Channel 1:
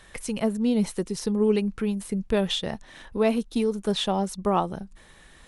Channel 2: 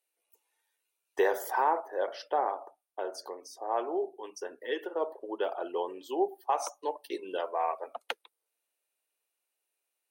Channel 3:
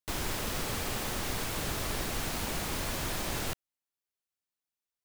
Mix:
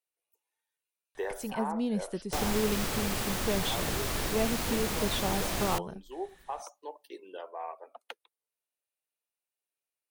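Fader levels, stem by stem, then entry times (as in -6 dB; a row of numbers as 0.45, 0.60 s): -8.0, -9.0, +1.5 dB; 1.15, 0.00, 2.25 s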